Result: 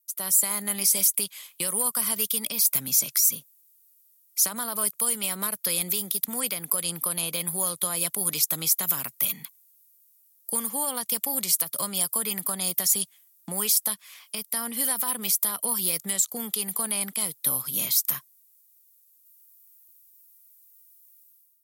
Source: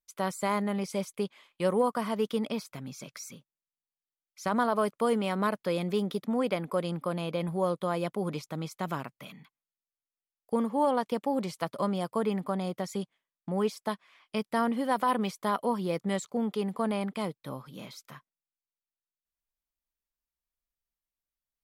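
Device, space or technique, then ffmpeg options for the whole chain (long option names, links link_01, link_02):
FM broadcast chain: -filter_complex "[0:a]highpass=58,dynaudnorm=framelen=120:gausssize=7:maxgain=14dB,acrossover=split=160|1200[link_01][link_02][link_03];[link_01]acompressor=threshold=-37dB:ratio=4[link_04];[link_02]acompressor=threshold=-29dB:ratio=4[link_05];[link_03]acompressor=threshold=-30dB:ratio=4[link_06];[link_04][link_05][link_06]amix=inputs=3:normalize=0,aemphasis=mode=production:type=75fm,alimiter=limit=-13.5dB:level=0:latency=1:release=157,asoftclip=type=hard:threshold=-15.5dB,lowpass=frequency=15000:width=0.5412,lowpass=frequency=15000:width=1.3066,aemphasis=mode=production:type=75fm,volume=-8dB"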